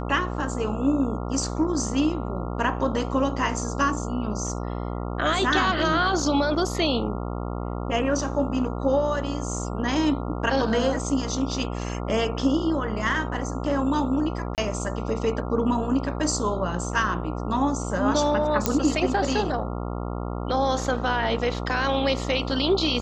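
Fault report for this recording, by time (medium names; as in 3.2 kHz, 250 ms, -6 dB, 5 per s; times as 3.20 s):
buzz 60 Hz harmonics 23 -30 dBFS
14.55–14.58 s: dropout 28 ms
18.66 s: pop -5 dBFS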